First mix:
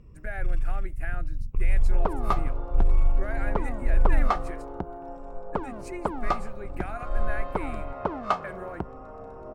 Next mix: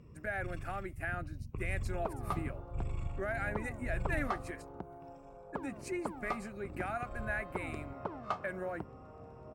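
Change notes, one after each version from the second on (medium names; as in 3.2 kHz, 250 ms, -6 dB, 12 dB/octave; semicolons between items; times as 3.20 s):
second sound -11.0 dB; master: add high-pass 93 Hz 12 dB/octave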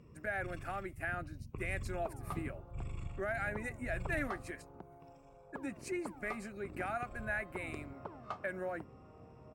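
second sound -6.5 dB; master: add bass shelf 120 Hz -6.5 dB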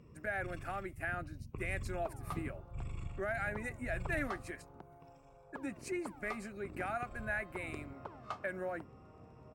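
second sound: add tilt EQ +2 dB/octave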